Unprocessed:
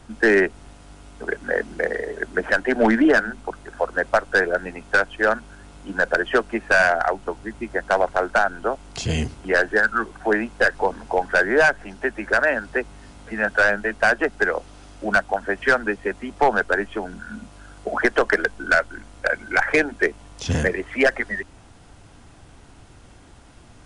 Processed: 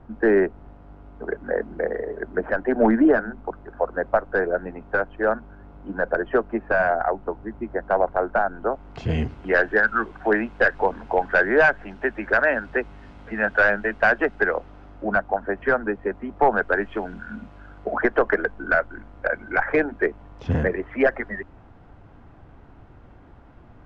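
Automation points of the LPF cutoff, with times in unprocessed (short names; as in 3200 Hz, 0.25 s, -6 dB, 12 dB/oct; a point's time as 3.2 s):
8.53 s 1100 Hz
9.46 s 2600 Hz
14.25 s 2600 Hz
15.1 s 1300 Hz
16.38 s 1300 Hz
16.97 s 2800 Hz
18.13 s 1500 Hz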